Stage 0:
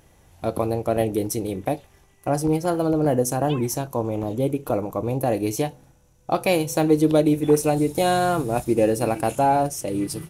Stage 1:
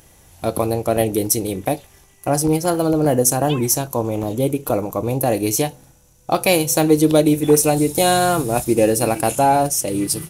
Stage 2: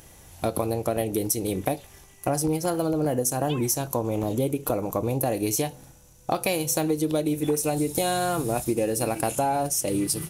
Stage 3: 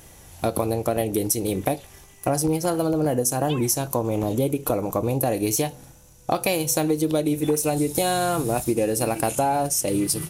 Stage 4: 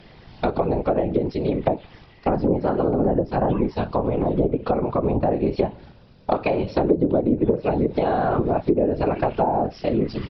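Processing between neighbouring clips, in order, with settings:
high shelf 3900 Hz +10 dB; gain +3.5 dB
compressor, threshold -22 dBFS, peak gain reduction 13 dB
wow and flutter 18 cents; gain +2.5 dB
whisperiser; downsampling 11025 Hz; treble ducked by the level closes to 750 Hz, closed at -17 dBFS; gain +2.5 dB

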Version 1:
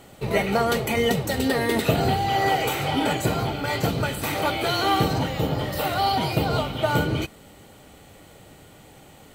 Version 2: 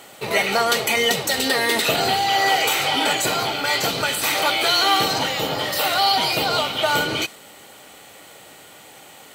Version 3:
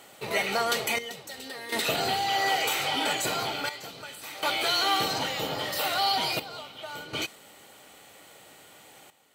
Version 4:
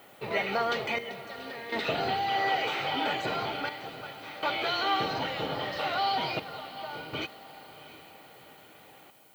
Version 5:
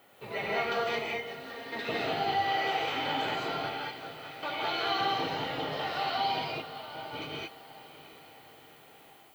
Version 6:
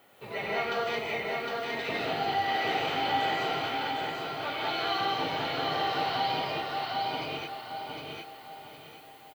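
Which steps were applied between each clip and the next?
HPF 930 Hz 6 dB/oct; dynamic EQ 5100 Hz, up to +5 dB, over -43 dBFS, Q 0.72; in parallel at -1 dB: limiter -23.5 dBFS, peak gain reduction 11.5 dB; on the sum: gain +3.5 dB
step gate "xxxx...xxxx" 61 bpm -12 dB; gain -7.5 dB
air absorption 250 m; diffused feedback echo 0.716 s, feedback 45%, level -15 dB; added noise violet -61 dBFS
non-linear reverb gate 0.24 s rising, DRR -4 dB; gain -7 dB
feedback echo 0.759 s, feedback 31%, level -3 dB

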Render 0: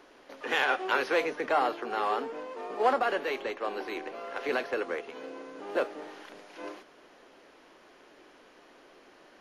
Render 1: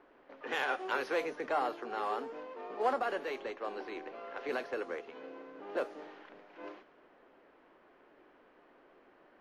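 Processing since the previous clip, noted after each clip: low-pass opened by the level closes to 1800 Hz, open at -25.5 dBFS; dynamic EQ 2900 Hz, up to -3 dB, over -44 dBFS, Q 0.78; gain -5.5 dB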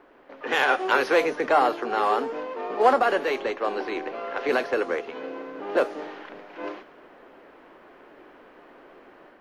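AGC gain up to 5 dB; gain +7.5 dB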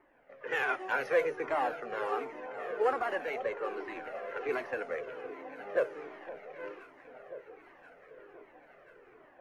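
ten-band EQ 125 Hz +8 dB, 250 Hz -4 dB, 500 Hz +4 dB, 1000 Hz -3 dB, 2000 Hz +6 dB, 4000 Hz -9 dB; echo with dull and thin repeats by turns 0.517 s, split 1100 Hz, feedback 78%, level -12 dB; cascading flanger falling 1.3 Hz; gain -7 dB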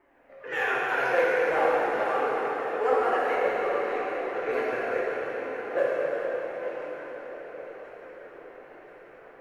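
plate-style reverb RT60 4.8 s, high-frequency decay 0.8×, DRR -6.5 dB

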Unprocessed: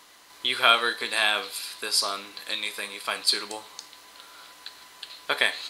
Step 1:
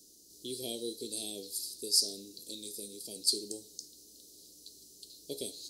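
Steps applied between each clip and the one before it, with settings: Chebyshev band-stop 390–5300 Hz, order 3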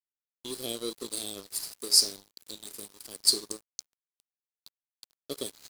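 crossover distortion -43 dBFS; gain +7 dB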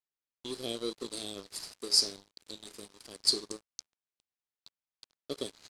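air absorption 68 m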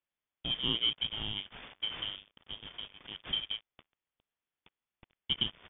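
inverted band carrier 3500 Hz; gain +5.5 dB

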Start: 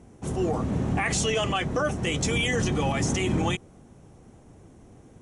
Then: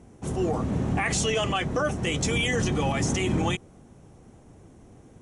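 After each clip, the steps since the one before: nothing audible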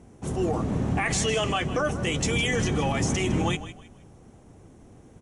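frequency-shifting echo 0.157 s, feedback 30%, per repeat -34 Hz, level -13.5 dB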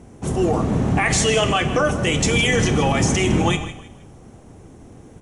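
Schroeder reverb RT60 0.71 s, combs from 26 ms, DRR 11 dB; gain +7 dB

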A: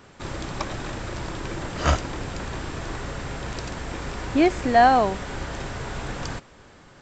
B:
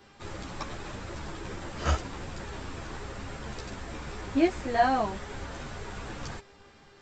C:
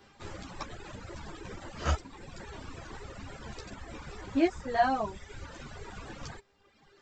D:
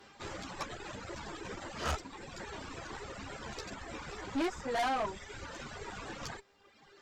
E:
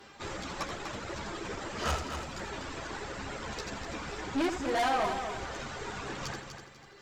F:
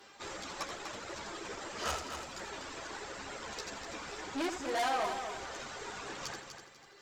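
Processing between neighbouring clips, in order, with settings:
buzz 400 Hz, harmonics 14, -53 dBFS -4 dB/oct; ensemble effect; gain -4 dB
reverb removal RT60 1.3 s; gain -2 dB
low shelf 180 Hz -9 dB; tube stage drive 34 dB, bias 0.5; gain +5 dB
in parallel at -12 dB: soft clip -38.5 dBFS, distortion -7 dB; on the sum: multi-head echo 82 ms, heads first and third, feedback 47%, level -8.5 dB; gain +2 dB
tone controls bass -9 dB, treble +4 dB; gain -3.5 dB

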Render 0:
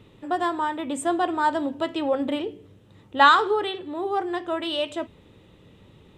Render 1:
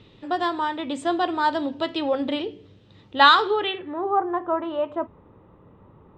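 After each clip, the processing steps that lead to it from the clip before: low-pass sweep 4600 Hz -> 1100 Hz, 3.44–4.16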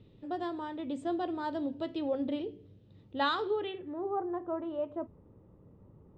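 EQ curve 140 Hz 0 dB, 590 Hz -5 dB, 1000 Hz -13 dB; gain -4 dB

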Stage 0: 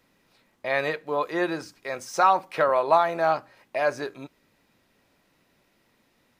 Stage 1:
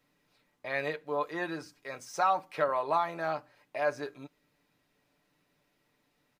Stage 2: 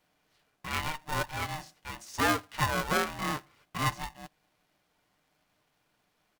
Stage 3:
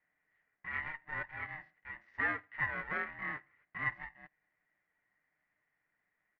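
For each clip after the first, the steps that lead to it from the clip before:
comb 6.8 ms, depth 50%; gain -8.5 dB
polarity switched at an audio rate 460 Hz
ladder low-pass 2000 Hz, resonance 85%; gain -2 dB

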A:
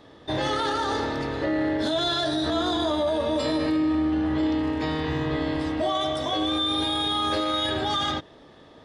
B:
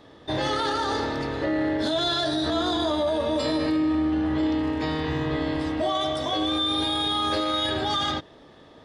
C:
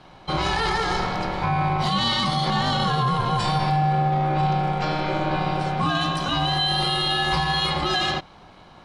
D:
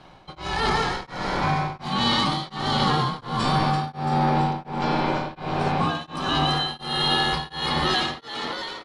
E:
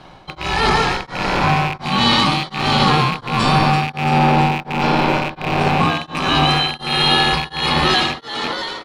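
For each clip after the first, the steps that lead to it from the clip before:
dynamic EQ 4600 Hz, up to +4 dB, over -47 dBFS, Q 5.6
ring modulator 460 Hz; gain +5.5 dB
frequency-shifting echo 0.337 s, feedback 55%, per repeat +88 Hz, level -5.5 dB; beating tremolo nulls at 1.4 Hz
rattling part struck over -36 dBFS, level -20 dBFS; gain +7 dB

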